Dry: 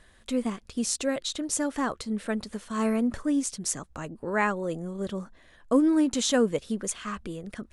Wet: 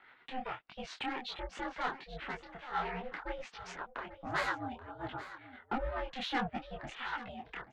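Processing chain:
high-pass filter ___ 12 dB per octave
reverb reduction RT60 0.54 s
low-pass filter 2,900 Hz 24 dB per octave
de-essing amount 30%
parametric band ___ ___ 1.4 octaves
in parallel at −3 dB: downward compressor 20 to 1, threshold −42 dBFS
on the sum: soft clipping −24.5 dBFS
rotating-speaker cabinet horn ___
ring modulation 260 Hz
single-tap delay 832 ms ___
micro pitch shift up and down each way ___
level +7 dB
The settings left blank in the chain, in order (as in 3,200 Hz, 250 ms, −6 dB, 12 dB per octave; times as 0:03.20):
760 Hz, 1,100 Hz, +3.5 dB, 7.5 Hz, −14.5 dB, 48 cents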